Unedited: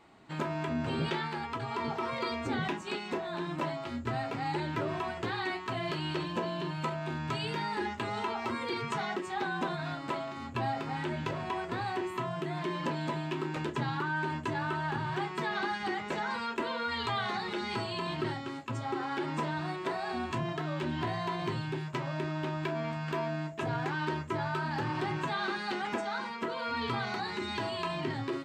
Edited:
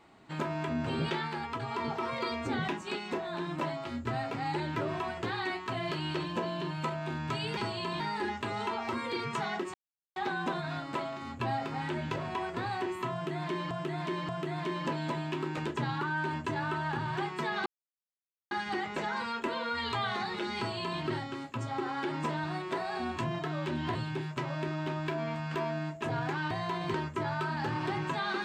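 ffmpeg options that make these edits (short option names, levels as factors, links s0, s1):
-filter_complex "[0:a]asplit=10[s0][s1][s2][s3][s4][s5][s6][s7][s8][s9];[s0]atrim=end=7.572[s10];[s1]atrim=start=17.708:end=18.142[s11];[s2]atrim=start=7.568:end=9.31,asetpts=PTS-STARTPTS,afade=t=out:st=1.738:d=0.004:c=hsin,apad=pad_dur=0.42[s12];[s3]atrim=start=9.31:end=12.862,asetpts=PTS-STARTPTS,afade=t=in:d=0.004:c=hsin[s13];[s4]atrim=start=12.278:end=12.862[s14];[s5]atrim=start=12.278:end=15.65,asetpts=PTS-STARTPTS,afade=t=out:st=3.368:d=0.004:c=hsin,apad=pad_dur=0.85[s15];[s6]atrim=start=15.65:end=21.092,asetpts=PTS-STARTPTS,afade=t=in:d=0.004:c=hsin[s16];[s7]atrim=start=21.518:end=24.082[s17];[s8]atrim=start=21.088:end=21.522[s18];[s9]atrim=start=24.078[s19];[s10][s11]acrossfade=d=0.004:c1=hsin:c2=hsin[s20];[s12][s13]concat=n=2:v=0:a=1[s21];[s20][s21]acrossfade=d=0.004:c1=hsin:c2=hsin[s22];[s22][s14]acrossfade=d=0.004:c1=hsin:c2=hsin[s23];[s15][s16]concat=n=2:v=0:a=1[s24];[s23][s24]acrossfade=d=0.004:c1=hsin:c2=hsin[s25];[s25][s17]acrossfade=d=0.004:c1=hsin:c2=hsin[s26];[s26][s18]acrossfade=d=0.004:c1=hsin:c2=hsin[s27];[s27][s19]acrossfade=d=0.004:c1=hsin:c2=hsin"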